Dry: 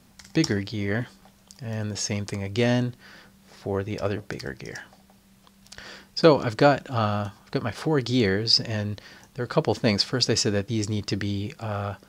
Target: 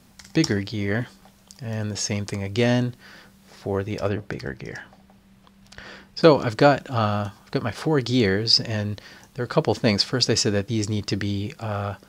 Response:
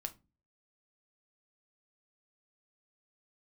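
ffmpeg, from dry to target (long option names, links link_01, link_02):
-filter_complex "[0:a]asettb=1/sr,asplit=3[link_01][link_02][link_03];[link_01]atrim=end=4.094[link_04];[link_02]atrim=start=4.09:end=6.21,asetpts=PTS-STARTPTS,afade=type=in:duration=0.004:curve=qsin,afade=type=out:start_time=2.116:duration=0.004:curve=qsin,bass=frequency=250:gain=2,treble=frequency=4000:gain=-8[link_05];[link_03]atrim=start=6.206[link_06];[link_04][link_05]acrossfade=duration=0.004:curve1=hsin:curve2=qsin[link_07];[link_07][link_06]acrossfade=duration=0.004:curve1=qsin:curve2=hsin,volume=2dB"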